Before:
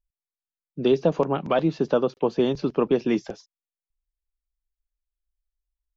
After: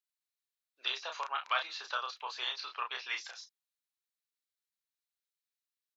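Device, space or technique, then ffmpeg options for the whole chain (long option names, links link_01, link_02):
headphones lying on a table: -filter_complex "[0:a]asettb=1/sr,asplit=3[link_01][link_02][link_03];[link_01]atrim=end=2.454[link_04];[link_02]atrim=start=2.45:end=3.17,asetpts=PTS-STARTPTS,afade=type=in:duration=0.004:curve=qsin,afade=type=out:start_time=0.716:duration=0.004:curve=qsin,lowpass=frequency=5700:width=0.5412,lowpass=frequency=5700:width=1.3066[link_05];[link_03]atrim=start=3.166[link_06];[link_04][link_05]acrossfade=duration=0.004:curve1=hsin:curve2=qsin[link_07];[link_07][link_06]acrossfade=duration=0.004:curve1=qsin:curve2=hsin,highpass=frequency=1200:width=0.5412,highpass=frequency=1200:width=1.3066,equalizer=frequency=4000:width_type=o:width=0.22:gain=7,asplit=2[link_08][link_09];[link_09]adelay=32,volume=-4.5dB[link_10];[link_08][link_10]amix=inputs=2:normalize=0"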